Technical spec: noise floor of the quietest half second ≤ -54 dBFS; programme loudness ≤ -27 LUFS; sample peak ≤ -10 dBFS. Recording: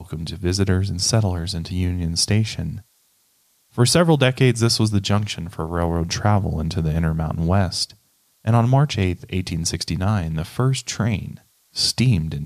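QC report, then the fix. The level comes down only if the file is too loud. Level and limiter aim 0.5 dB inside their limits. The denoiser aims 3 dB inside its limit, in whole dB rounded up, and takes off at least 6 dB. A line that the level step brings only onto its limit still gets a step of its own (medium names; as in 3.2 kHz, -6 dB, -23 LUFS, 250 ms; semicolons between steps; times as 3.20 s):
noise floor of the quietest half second -62 dBFS: pass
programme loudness -20.5 LUFS: fail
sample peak -4.0 dBFS: fail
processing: trim -7 dB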